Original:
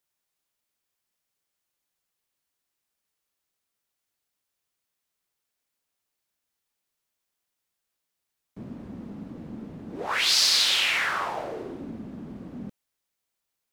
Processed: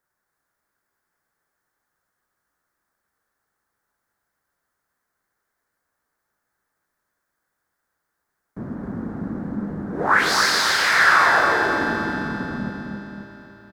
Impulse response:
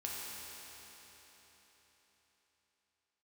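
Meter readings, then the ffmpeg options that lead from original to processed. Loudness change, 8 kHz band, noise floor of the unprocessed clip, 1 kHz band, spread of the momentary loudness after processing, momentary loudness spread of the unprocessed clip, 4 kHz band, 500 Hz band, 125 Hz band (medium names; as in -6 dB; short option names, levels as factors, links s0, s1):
+2.5 dB, +0.5 dB, -83 dBFS, +14.0 dB, 19 LU, 22 LU, -2.0 dB, +10.5 dB, +10.5 dB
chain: -filter_complex "[0:a]highshelf=f=2100:t=q:w=3:g=-9,aecho=1:1:267|534|801|1068|1335:0.562|0.247|0.109|0.0479|0.0211,asplit=2[s0][s1];[1:a]atrim=start_sample=2205[s2];[s1][s2]afir=irnorm=-1:irlink=0,volume=0.668[s3];[s0][s3]amix=inputs=2:normalize=0,volume=1.78"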